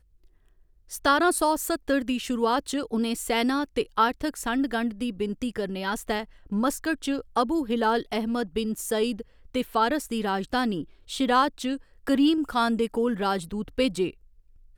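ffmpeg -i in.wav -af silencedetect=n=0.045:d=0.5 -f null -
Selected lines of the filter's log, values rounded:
silence_start: 0.00
silence_end: 0.93 | silence_duration: 0.93
silence_start: 14.09
silence_end: 14.78 | silence_duration: 0.69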